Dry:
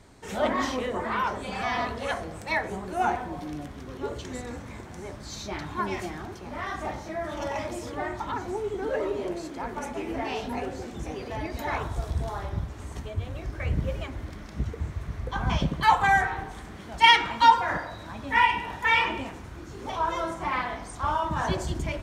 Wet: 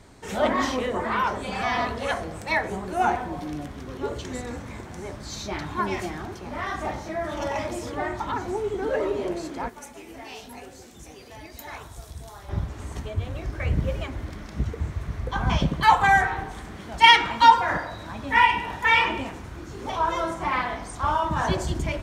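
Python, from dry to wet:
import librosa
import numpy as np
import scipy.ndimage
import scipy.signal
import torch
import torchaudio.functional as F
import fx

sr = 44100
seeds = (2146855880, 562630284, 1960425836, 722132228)

y = fx.pre_emphasis(x, sr, coefficient=0.8, at=(9.68, 12.48), fade=0.02)
y = y * 10.0 ** (3.0 / 20.0)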